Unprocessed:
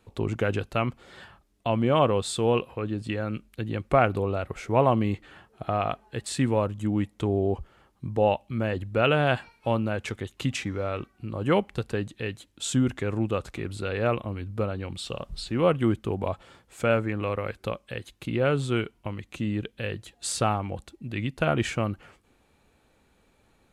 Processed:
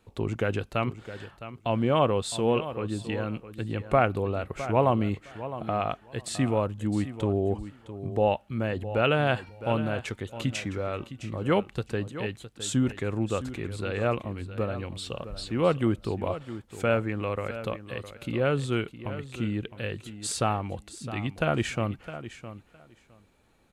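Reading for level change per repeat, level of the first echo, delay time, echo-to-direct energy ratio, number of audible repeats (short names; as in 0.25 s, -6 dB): -16.5 dB, -13.0 dB, 0.661 s, -13.0 dB, 2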